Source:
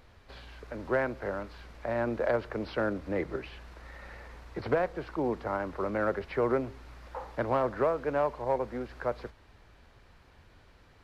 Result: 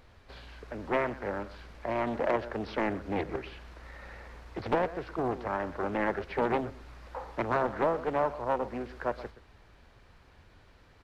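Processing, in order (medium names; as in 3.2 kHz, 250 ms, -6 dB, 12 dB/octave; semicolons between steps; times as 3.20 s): delay 123 ms -15.5 dB; loudspeaker Doppler distortion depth 0.76 ms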